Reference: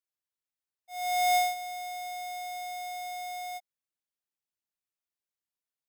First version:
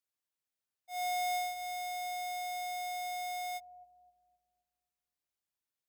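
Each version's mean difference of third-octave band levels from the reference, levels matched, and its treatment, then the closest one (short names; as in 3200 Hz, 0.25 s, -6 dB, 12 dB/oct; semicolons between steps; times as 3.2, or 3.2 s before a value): 3.0 dB: HPF 55 Hz; compressor 6:1, threshold -34 dBFS, peak gain reduction 10 dB; analogue delay 0.26 s, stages 1024, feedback 56%, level -9.5 dB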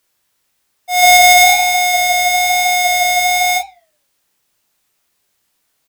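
4.5 dB: flange 1.1 Hz, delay 8.1 ms, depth 4 ms, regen -87%; on a send: early reflections 20 ms -10.5 dB, 30 ms -7 dB; on the sum: maximiser +32 dB; gain -1 dB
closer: first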